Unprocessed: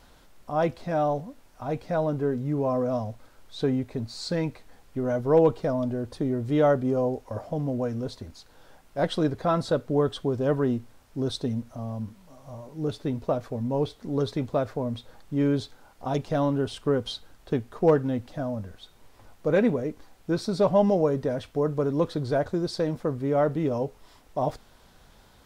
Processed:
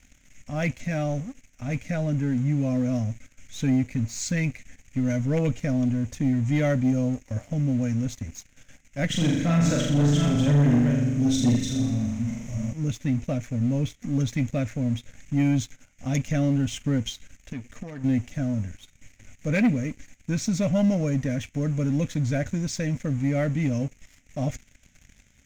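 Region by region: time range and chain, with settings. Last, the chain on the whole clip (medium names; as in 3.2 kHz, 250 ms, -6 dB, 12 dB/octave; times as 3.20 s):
9.06–12.73 s: chunks repeated in reverse 406 ms, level -4.5 dB + flutter echo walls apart 7.1 m, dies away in 1 s
17.09–18.04 s: peaking EQ 130 Hz -4.5 dB 0.95 oct + compression 3:1, threshold -35 dBFS
whole clip: FFT filter 130 Hz 0 dB, 180 Hz -3 dB, 270 Hz -1 dB, 380 Hz -24 dB, 570 Hz -11 dB, 1 kHz -24 dB, 2.2 kHz +7 dB, 4.5 kHz -14 dB, 6.6 kHz +11 dB, 9.9 kHz -15 dB; waveshaping leveller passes 2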